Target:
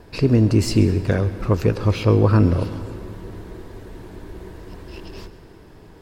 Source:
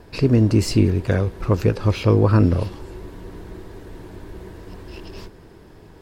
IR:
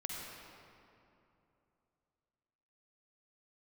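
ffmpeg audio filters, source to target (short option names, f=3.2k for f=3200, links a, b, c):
-filter_complex "[0:a]asplit=2[a][b];[1:a]atrim=start_sample=2205,adelay=133[c];[b][c]afir=irnorm=-1:irlink=0,volume=-14.5dB[d];[a][d]amix=inputs=2:normalize=0"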